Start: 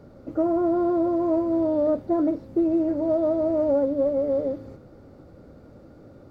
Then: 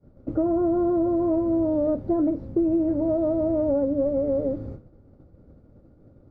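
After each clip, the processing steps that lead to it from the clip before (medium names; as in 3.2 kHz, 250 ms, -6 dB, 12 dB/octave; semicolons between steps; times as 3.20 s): expander -38 dBFS; tilt EQ -3 dB/octave; compression 2:1, threshold -23 dBFS, peak gain reduction 5.5 dB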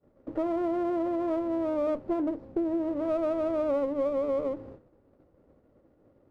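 tone controls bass -14 dB, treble -7 dB; sliding maximum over 9 samples; trim -2.5 dB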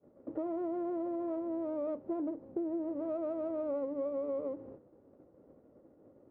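compression 1.5:1, threshold -53 dBFS, peak gain reduction 10 dB; band-pass filter 380 Hz, Q 0.56; vibrato 7 Hz 24 cents; trim +3 dB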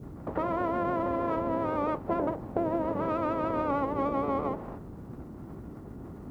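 spectral peaks clipped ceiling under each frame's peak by 24 dB; band noise 34–340 Hz -50 dBFS; trim +7 dB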